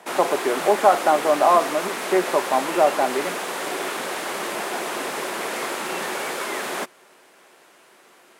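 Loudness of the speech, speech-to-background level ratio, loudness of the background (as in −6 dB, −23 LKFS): −20.5 LKFS, 7.0 dB, −27.5 LKFS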